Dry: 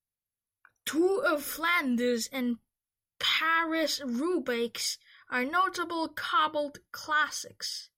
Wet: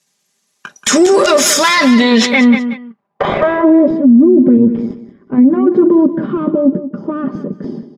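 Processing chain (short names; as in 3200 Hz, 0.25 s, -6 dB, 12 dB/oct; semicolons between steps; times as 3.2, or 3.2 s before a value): half-wave gain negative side -7 dB; HPF 150 Hz 24 dB/oct; notch 1400 Hz, Q 15; comb 5 ms, depth 63%; in parallel at -1.5 dB: negative-ratio compressor -35 dBFS, ratio -0.5; 4.57–5.38 on the sum: AM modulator 110 Hz, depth 40%; wrapped overs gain 16.5 dB; low-pass sweep 6900 Hz -> 280 Hz, 1.59–3.98; feedback echo 0.183 s, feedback 21%, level -13 dB; maximiser +24.5 dB; gain -1 dB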